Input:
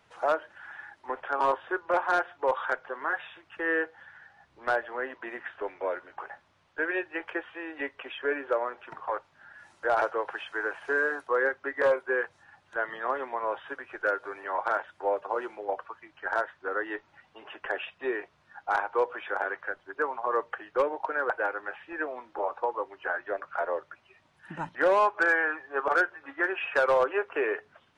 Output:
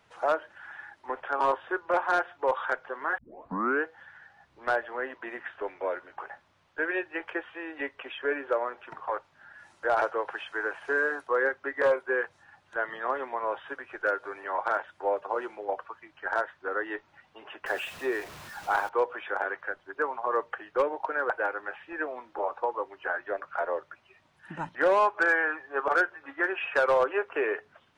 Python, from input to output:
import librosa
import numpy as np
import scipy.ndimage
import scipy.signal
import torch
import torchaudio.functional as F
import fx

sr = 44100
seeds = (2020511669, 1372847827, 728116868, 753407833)

y = fx.zero_step(x, sr, step_db=-40.0, at=(17.66, 18.89))
y = fx.edit(y, sr, fx.tape_start(start_s=3.18, length_s=0.66), tone=tone)